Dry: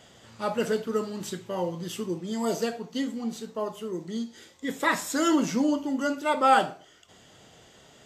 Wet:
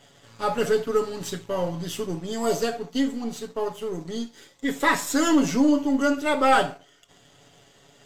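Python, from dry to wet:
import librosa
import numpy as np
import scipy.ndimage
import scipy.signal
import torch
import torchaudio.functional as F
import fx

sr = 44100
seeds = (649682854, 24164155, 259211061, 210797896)

y = np.where(x < 0.0, 10.0 ** (-3.0 / 20.0) * x, x)
y = y + 0.64 * np.pad(y, (int(7.1 * sr / 1000.0), 0))[:len(y)]
y = fx.leveller(y, sr, passes=1)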